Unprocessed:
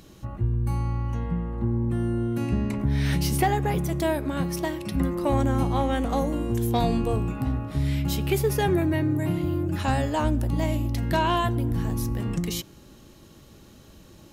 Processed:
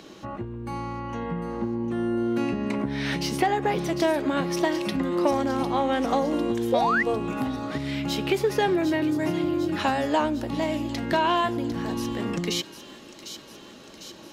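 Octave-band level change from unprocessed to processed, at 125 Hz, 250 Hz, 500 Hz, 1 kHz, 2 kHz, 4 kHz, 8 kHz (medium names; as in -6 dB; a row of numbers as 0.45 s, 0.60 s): -10.0 dB, +1.0 dB, +2.5 dB, +2.5 dB, +4.5 dB, +3.5 dB, -1.5 dB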